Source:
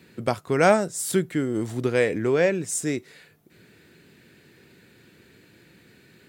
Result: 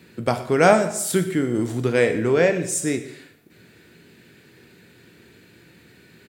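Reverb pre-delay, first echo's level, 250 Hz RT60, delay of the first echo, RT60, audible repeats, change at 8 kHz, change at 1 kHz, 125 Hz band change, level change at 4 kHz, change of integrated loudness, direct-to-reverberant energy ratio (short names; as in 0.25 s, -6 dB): 5 ms, -19.0 dB, 0.80 s, 0.119 s, 0.75 s, 1, +3.0 dB, +3.5 dB, +3.5 dB, +3.5 dB, +3.0 dB, 7.0 dB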